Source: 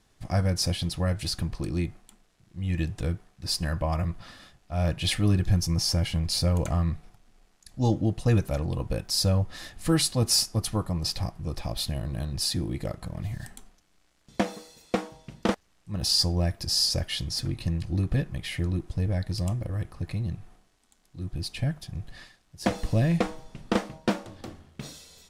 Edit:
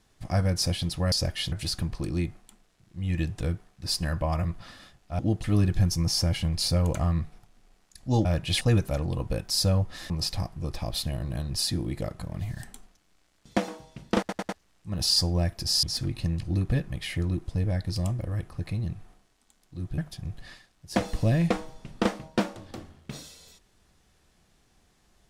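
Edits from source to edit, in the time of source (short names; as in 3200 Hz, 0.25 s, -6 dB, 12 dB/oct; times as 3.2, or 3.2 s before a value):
4.79–5.15 swap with 7.96–8.21
9.7–10.93 cut
14.51–15 cut
15.51 stutter 0.10 s, 4 plays
16.85–17.25 move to 1.12
21.4–21.68 cut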